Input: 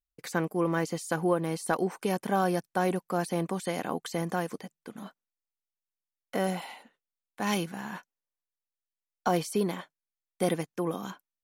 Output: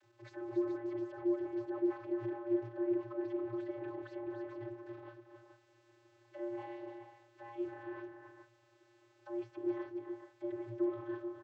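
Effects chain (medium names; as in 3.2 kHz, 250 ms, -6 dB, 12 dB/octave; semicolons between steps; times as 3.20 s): jump at every zero crossing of -32.5 dBFS; expander -28 dBFS; bass shelf 220 Hz -10.5 dB; upward compressor, threshold -47 dBFS; peak limiter -35.5 dBFS, peak gain reduction 21.5 dB; small resonant body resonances 240/350/700/1600 Hz, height 8 dB; low-pass that closes with the level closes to 2 kHz, closed at -37.5 dBFS; multi-tap echo 279/428 ms -7.5/-9 dB; vocoder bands 32, square 117 Hz; tape noise reduction on one side only decoder only; trim +2.5 dB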